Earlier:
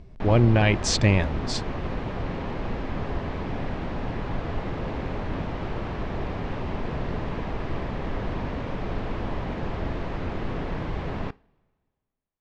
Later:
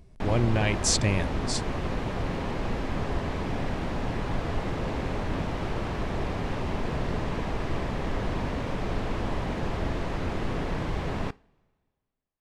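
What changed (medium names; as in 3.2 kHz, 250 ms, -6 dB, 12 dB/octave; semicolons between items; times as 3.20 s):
speech -6.5 dB; master: remove distance through air 130 m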